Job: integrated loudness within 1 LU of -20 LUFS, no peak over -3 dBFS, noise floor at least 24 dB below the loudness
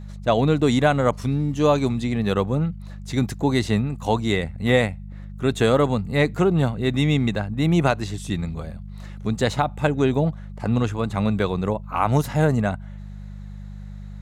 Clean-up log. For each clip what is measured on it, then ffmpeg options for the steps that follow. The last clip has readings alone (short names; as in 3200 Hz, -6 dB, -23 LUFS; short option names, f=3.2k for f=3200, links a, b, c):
hum 50 Hz; harmonics up to 200 Hz; hum level -32 dBFS; loudness -22.0 LUFS; peak -5.5 dBFS; loudness target -20.0 LUFS
-> -af "bandreject=f=50:t=h:w=4,bandreject=f=100:t=h:w=4,bandreject=f=150:t=h:w=4,bandreject=f=200:t=h:w=4"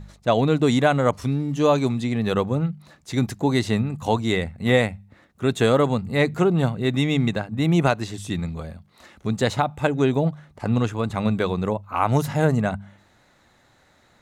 hum none; loudness -22.5 LUFS; peak -6.0 dBFS; loudness target -20.0 LUFS
-> -af "volume=2.5dB"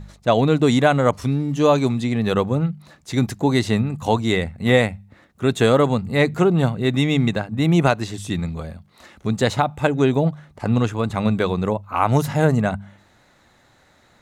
loudness -20.0 LUFS; peak -3.5 dBFS; noise floor -56 dBFS